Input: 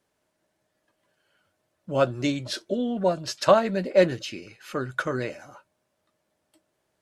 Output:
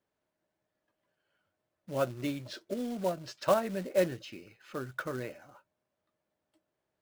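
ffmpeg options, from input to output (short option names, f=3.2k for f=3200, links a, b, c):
-af "aemphasis=mode=reproduction:type=50kf,acrusher=bits=4:mode=log:mix=0:aa=0.000001,volume=-8.5dB"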